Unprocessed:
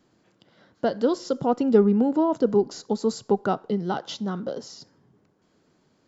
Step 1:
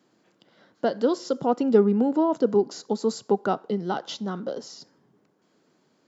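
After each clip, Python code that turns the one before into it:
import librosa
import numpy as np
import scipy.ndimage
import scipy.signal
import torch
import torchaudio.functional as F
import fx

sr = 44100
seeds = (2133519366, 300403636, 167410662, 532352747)

y = scipy.signal.sosfilt(scipy.signal.butter(2, 180.0, 'highpass', fs=sr, output='sos'), x)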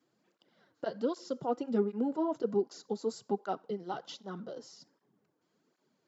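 y = fx.flanger_cancel(x, sr, hz=1.3, depth_ms=5.5)
y = y * 10.0 ** (-7.5 / 20.0)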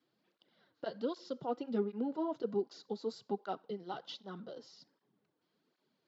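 y = fx.lowpass_res(x, sr, hz=4000.0, q=1.9)
y = y * 10.0 ** (-4.5 / 20.0)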